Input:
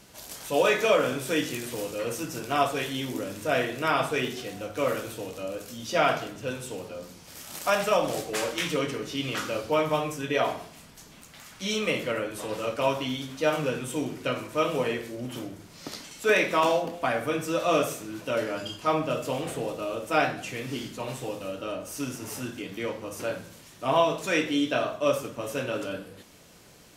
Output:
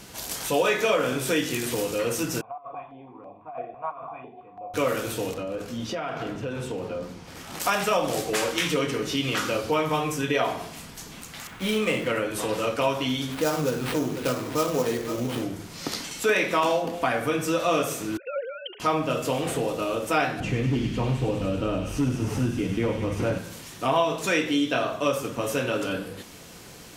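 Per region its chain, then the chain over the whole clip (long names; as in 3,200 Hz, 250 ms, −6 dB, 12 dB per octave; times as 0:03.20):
0:02.41–0:04.74: formant resonators in series a + compressor whose output falls as the input rises −38 dBFS + notch on a step sequencer 6 Hz 350–1,500 Hz
0:05.34–0:07.60: low-pass filter 1,800 Hz 6 dB per octave + downward compressor 12 to 1, threshold −34 dBFS
0:11.47–0:12.08: running median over 9 samples + double-tracking delay 23 ms −10.5 dB
0:13.32–0:15.42: single-tap delay 497 ms −16 dB + dynamic equaliser 2,600 Hz, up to −7 dB, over −45 dBFS, Q 0.97 + sample-rate reduction 6,400 Hz, jitter 20%
0:18.17–0:18.80: three sine waves on the formant tracks + linear-phase brick-wall high-pass 200 Hz + downward compressor 1.5 to 1, threshold −50 dBFS
0:20.40–0:23.38: RIAA equalisation playback + gain into a clipping stage and back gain 20.5 dB + delay with a high-pass on its return 99 ms, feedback 79%, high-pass 2,500 Hz, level −4 dB
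whole clip: notch filter 600 Hz, Q 12; downward compressor 2 to 1, threshold −34 dBFS; level +8.5 dB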